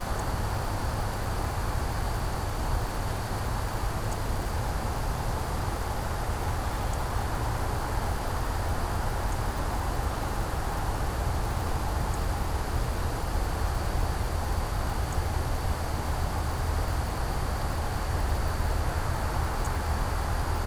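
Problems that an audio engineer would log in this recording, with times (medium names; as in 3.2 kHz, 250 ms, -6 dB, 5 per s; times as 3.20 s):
crackle 140 per s -34 dBFS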